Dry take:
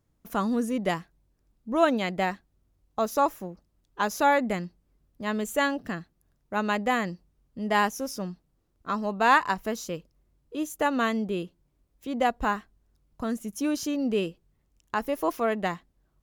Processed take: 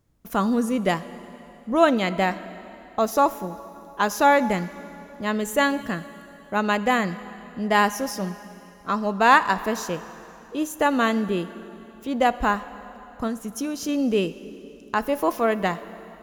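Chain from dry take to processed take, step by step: 13.27–13.89 compressor, threshold -30 dBFS, peak gain reduction 7 dB; plate-style reverb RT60 3.2 s, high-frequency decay 0.9×, DRR 13.5 dB; gain +4.5 dB

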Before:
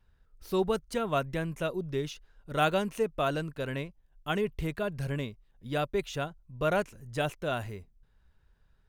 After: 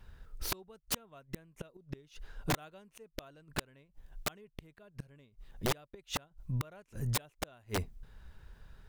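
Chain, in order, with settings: flipped gate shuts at -27 dBFS, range -38 dB; wrapped overs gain 36 dB; gain +12 dB

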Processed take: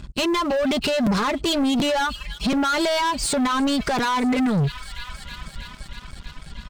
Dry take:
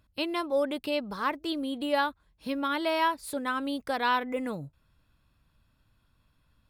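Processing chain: compressor, threshold -30 dBFS, peak gain reduction 8.5 dB; thin delay 0.319 s, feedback 81%, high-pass 1900 Hz, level -18.5 dB; reverb removal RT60 0.76 s; comb 4.9 ms, depth 69%; limiter -31.5 dBFS, peak gain reduction 11 dB; sample leveller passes 1; elliptic low-pass 8500 Hz; tone controls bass +11 dB, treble +4 dB; sample leveller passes 3; crackling interface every 0.73 s, samples 256, repeat, from 0.33; gain +8 dB

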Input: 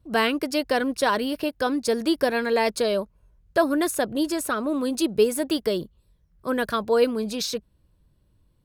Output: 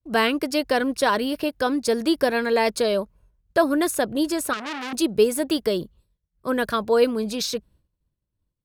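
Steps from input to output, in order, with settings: expander -50 dBFS; 4.53–4.93 core saturation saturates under 2900 Hz; gain +1.5 dB

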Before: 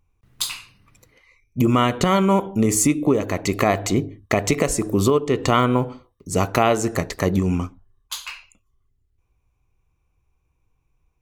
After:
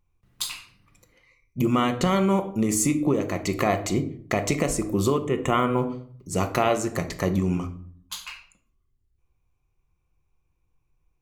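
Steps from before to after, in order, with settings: 5.22–5.78 Butterworth band-stop 4700 Hz, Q 1.3; shoebox room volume 830 m³, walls furnished, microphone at 0.89 m; gain -5 dB

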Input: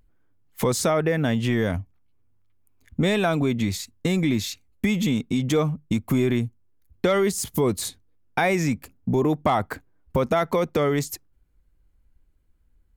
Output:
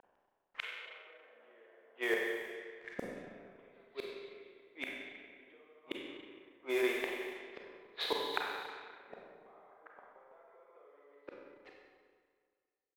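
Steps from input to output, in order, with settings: Chebyshev high-pass 410 Hz, order 4; low-pass opened by the level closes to 2200 Hz, open at -24 dBFS; steep low-pass 3500 Hz 36 dB/oct; tapped delay 44/56/154/214/525 ms -10.5/-13/-4.5/-14/-15.5 dB; compressor 16:1, threshold -33 dBFS, peak gain reduction 16.5 dB; companded quantiser 6-bit; flipped gate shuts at -34 dBFS, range -40 dB; Schroeder reverb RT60 1.9 s, combs from 31 ms, DRR -1.5 dB; low-pass opened by the level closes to 1500 Hz, open at -50 dBFS; gain +12.5 dB

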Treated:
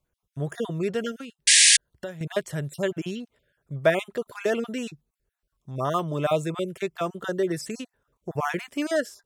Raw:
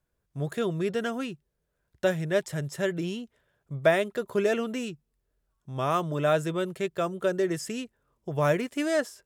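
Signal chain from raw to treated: random spectral dropouts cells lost 27%; 1.11–2.21 compressor 2.5:1, threshold -40 dBFS, peak gain reduction 14 dB; 1.47–1.77 painted sound noise 1600–10000 Hz -17 dBFS; gain +1.5 dB

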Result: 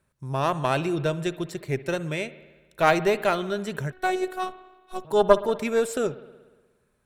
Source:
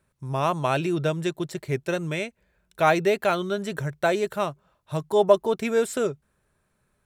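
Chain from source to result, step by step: added harmonics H 2 -9 dB, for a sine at -4.5 dBFS; spring tank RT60 1.3 s, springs 59 ms, chirp 25 ms, DRR 15 dB; 3.92–5.05 robotiser 371 Hz; gain -1 dB

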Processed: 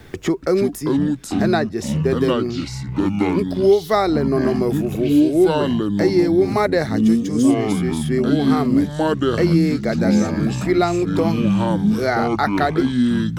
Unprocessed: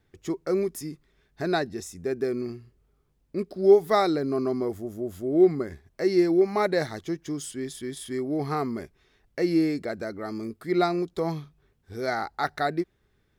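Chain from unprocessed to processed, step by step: echoes that change speed 0.24 s, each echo -5 st, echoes 3; three-band squash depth 70%; gain +6 dB

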